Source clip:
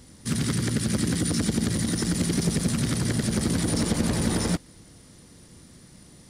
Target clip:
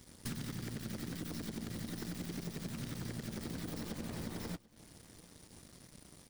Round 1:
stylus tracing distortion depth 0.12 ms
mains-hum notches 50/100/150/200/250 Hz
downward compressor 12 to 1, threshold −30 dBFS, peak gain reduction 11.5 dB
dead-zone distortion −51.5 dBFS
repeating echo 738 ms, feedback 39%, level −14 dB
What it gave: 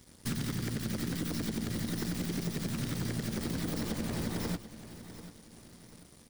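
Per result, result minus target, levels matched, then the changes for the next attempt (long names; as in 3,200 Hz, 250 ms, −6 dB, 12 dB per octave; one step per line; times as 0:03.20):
downward compressor: peak gain reduction −6.5 dB; echo-to-direct +9 dB
change: downward compressor 12 to 1, threshold −37 dBFS, peak gain reduction 18 dB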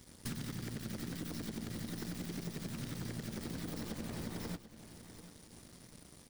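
echo-to-direct +9 dB
change: repeating echo 738 ms, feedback 39%, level −23 dB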